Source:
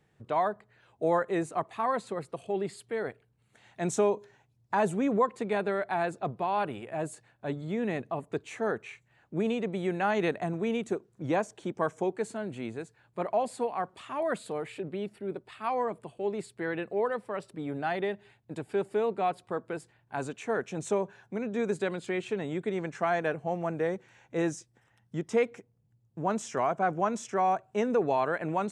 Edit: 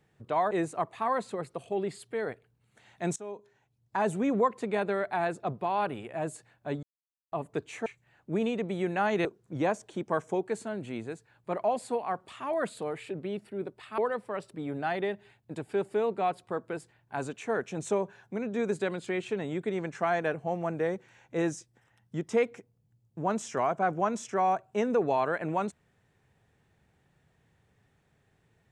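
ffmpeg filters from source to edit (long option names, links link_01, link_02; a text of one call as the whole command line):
ffmpeg -i in.wav -filter_complex "[0:a]asplit=8[link_01][link_02][link_03][link_04][link_05][link_06][link_07][link_08];[link_01]atrim=end=0.512[link_09];[link_02]atrim=start=1.288:end=3.94,asetpts=PTS-STARTPTS,afade=type=out:start_time=2.648:duration=0.004:curve=hsin:silence=0.0794328[link_10];[link_03]atrim=start=3.94:end=7.61,asetpts=PTS-STARTPTS,afade=type=in:duration=1.07:silence=0.0794328,afade=type=out:start_time=3.666:duration=0.004:curve=hsin[link_11];[link_04]atrim=start=7.61:end=8.1,asetpts=PTS-STARTPTS,volume=0[link_12];[link_05]atrim=start=8.1:end=8.642,asetpts=PTS-STARTPTS,afade=type=in:duration=0.004:curve=hsin[link_13];[link_06]atrim=start=8.898:end=10.292[link_14];[link_07]atrim=start=10.938:end=15.672[link_15];[link_08]atrim=start=16.978[link_16];[link_10][link_11][link_12][link_13]concat=n=4:v=0:a=1[link_17];[link_09][link_17]acrossfade=duration=0.004:curve1=hsin:curve2=hsin[link_18];[link_18][link_14]acrossfade=duration=0.004:curve1=hsin:curve2=hsin[link_19];[link_19][link_15]acrossfade=duration=0.004:curve1=hsin:curve2=hsin[link_20];[link_20][link_16]acrossfade=duration=0.004:curve1=hsin:curve2=hsin" out.wav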